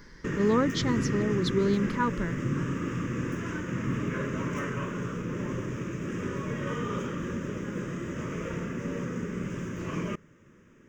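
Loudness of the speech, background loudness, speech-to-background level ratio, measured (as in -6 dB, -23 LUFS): -28.5 LUFS, -33.0 LUFS, 4.5 dB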